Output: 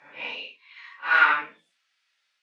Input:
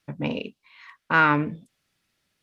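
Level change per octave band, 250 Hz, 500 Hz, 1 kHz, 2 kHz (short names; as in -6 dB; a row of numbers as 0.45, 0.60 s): -22.5, -11.0, -0.5, +3.0 dB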